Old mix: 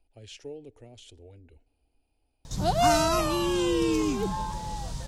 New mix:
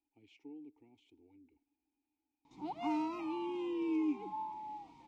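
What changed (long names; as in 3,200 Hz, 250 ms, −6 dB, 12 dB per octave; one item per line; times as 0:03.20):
background: add bass and treble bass −11 dB, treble −5 dB
master: add formant filter u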